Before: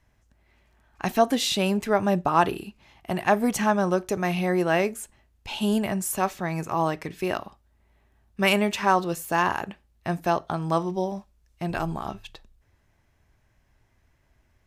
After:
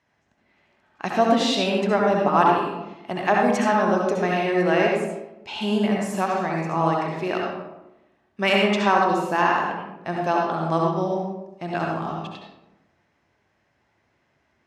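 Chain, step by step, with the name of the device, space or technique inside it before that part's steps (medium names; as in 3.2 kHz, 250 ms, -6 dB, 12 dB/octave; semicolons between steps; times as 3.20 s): supermarket ceiling speaker (band-pass 200–5400 Hz; reverberation RT60 0.95 s, pre-delay 62 ms, DRR -1.5 dB)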